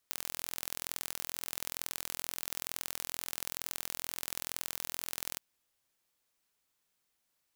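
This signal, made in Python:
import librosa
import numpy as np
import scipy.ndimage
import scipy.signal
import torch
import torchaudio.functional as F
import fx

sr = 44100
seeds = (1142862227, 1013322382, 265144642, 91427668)

y = fx.impulse_train(sr, length_s=5.27, per_s=42.2, accent_every=2, level_db=-8.0)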